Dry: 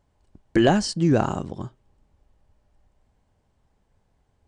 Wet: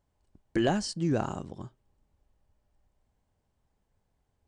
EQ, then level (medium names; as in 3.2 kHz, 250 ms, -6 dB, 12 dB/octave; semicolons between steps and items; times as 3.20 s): treble shelf 6.8 kHz +4.5 dB; -8.5 dB